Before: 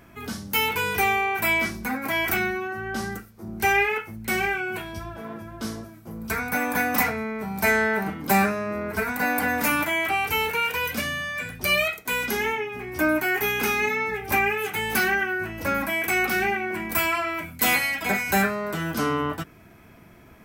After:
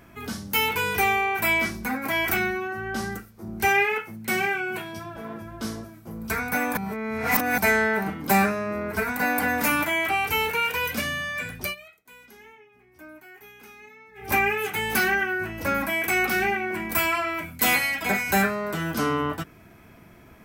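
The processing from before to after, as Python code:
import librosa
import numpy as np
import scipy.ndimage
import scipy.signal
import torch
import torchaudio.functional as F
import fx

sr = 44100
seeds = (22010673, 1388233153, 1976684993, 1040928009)

y = fx.highpass(x, sr, hz=110.0, slope=24, at=(3.68, 5.16))
y = fx.edit(y, sr, fx.reverse_span(start_s=6.77, length_s=0.81),
    fx.fade_down_up(start_s=11.6, length_s=2.7, db=-23.5, fade_s=0.15), tone=tone)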